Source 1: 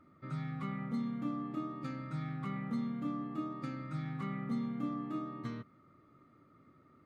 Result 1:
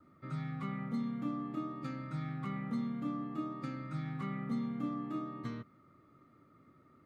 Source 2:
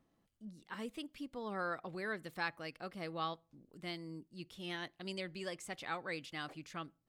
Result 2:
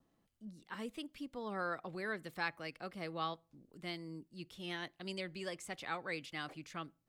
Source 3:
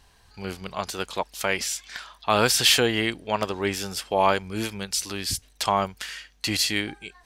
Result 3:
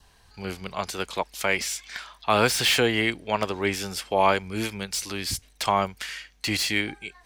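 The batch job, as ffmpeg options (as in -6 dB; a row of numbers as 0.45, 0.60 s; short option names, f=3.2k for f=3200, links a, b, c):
-filter_complex "[0:a]adynamicequalizer=threshold=0.00398:dfrequency=2200:dqfactor=5.5:tfrequency=2200:tqfactor=5.5:attack=5:release=100:ratio=0.375:range=2.5:mode=boostabove:tftype=bell,acrossover=split=390|960|2700[a][b][c][d];[d]asoftclip=type=tanh:threshold=-23dB[e];[a][b][c][e]amix=inputs=4:normalize=0"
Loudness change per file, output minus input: 0.0, 0.0, -1.0 LU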